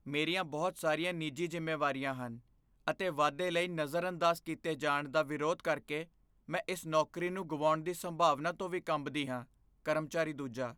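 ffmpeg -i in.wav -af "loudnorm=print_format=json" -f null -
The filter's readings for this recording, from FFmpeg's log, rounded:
"input_i" : "-35.0",
"input_tp" : "-15.3",
"input_lra" : "2.0",
"input_thresh" : "-45.2",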